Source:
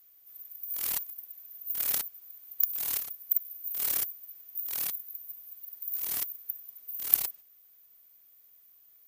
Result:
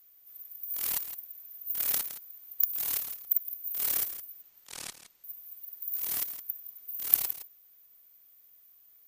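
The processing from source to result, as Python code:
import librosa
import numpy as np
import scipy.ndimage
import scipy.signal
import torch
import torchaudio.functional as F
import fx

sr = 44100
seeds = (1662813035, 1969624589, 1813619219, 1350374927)

y = fx.lowpass(x, sr, hz=9300.0, slope=24, at=(4.42, 5.24))
y = y + 10.0 ** (-12.5 / 20.0) * np.pad(y, (int(165 * sr / 1000.0), 0))[:len(y)]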